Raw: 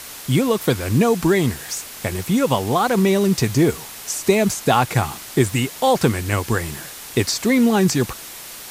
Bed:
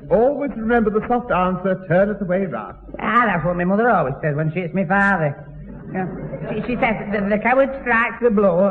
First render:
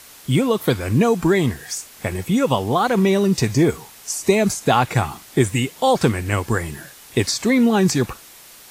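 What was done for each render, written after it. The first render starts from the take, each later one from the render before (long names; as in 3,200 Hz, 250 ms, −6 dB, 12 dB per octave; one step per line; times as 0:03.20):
noise reduction from a noise print 8 dB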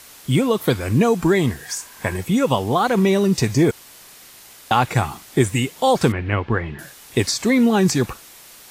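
0:01.69–0:02.17: hollow resonant body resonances 1,000/1,600 Hz, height 12 dB, ringing for 25 ms
0:03.71–0:04.71: fill with room tone
0:06.12–0:06.79: low-pass filter 3,200 Hz 24 dB per octave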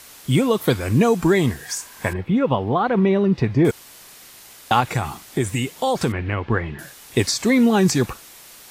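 0:02.13–0:03.65: high-frequency loss of the air 380 metres
0:04.80–0:06.49: downward compressor 2 to 1, threshold −19 dBFS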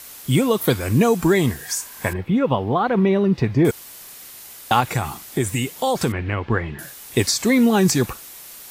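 high-shelf EQ 11,000 Hz +11 dB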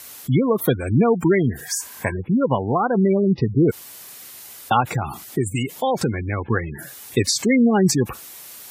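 high-pass filter 59 Hz 12 dB per octave
gate on every frequency bin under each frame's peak −20 dB strong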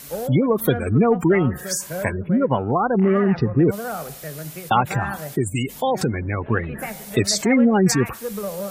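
mix in bed −13.5 dB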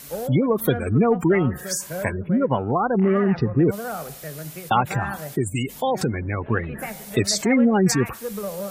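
level −1.5 dB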